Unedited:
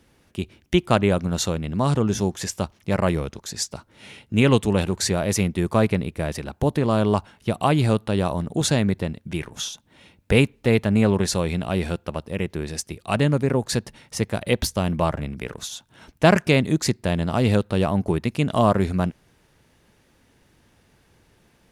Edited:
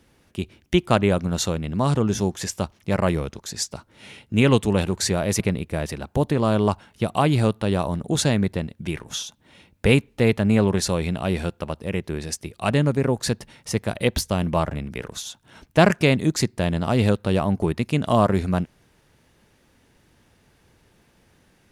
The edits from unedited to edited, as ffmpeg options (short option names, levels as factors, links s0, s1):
-filter_complex "[0:a]asplit=2[s0][s1];[s0]atrim=end=5.402[s2];[s1]atrim=start=5.858[s3];[s2][s3]acrossfade=d=0.004:c1=hsin:c2=hsin"